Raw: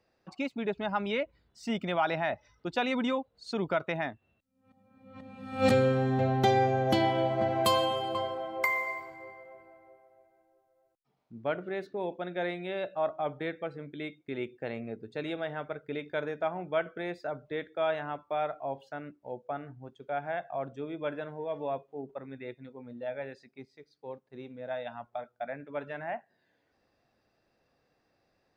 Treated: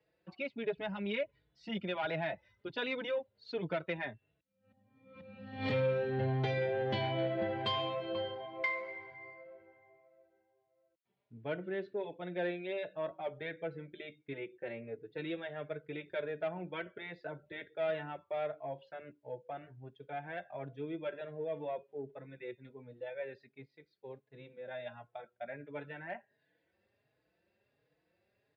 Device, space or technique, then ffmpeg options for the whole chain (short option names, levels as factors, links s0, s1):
barber-pole flanger into a guitar amplifier: -filter_complex "[0:a]asettb=1/sr,asplit=3[s0][s1][s2];[s0]atrim=end=14.334[s3];[s1]atrim=start=14.33:end=15.18,asetpts=PTS-STARTPTS,afade=t=in:d=0.004:c=qsin,afade=t=out:st=0.846:d=0.004:c=qsin,bass=f=250:g=-6,treble=f=4000:g=-12[s4];[s2]atrim=start=15.176[s5];[s3][s4]acrossfade=d=0.004:c1=hsin:c2=qsin[s6];[s6][s5]acrossfade=d=0.004:c1=qsin:c2=hsin,asplit=2[s7][s8];[s8]adelay=4.3,afreqshift=1.4[s9];[s7][s9]amix=inputs=2:normalize=1,asoftclip=type=tanh:threshold=0.0631,highpass=83,equalizer=f=250:t=q:w=4:g=-9,equalizer=f=770:t=q:w=4:g=-8,equalizer=f=1200:t=q:w=4:g=-10,lowpass=f=3800:w=0.5412,lowpass=f=3800:w=1.3066,volume=1.12"